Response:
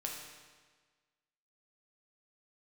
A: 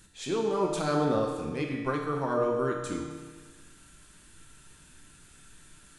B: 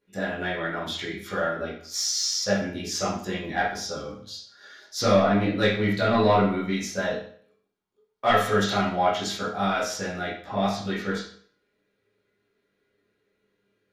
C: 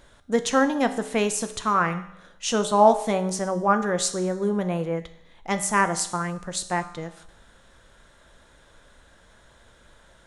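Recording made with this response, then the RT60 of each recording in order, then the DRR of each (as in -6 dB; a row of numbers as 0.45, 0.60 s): A; 1.5, 0.55, 0.75 s; -1.0, -10.0, 8.5 dB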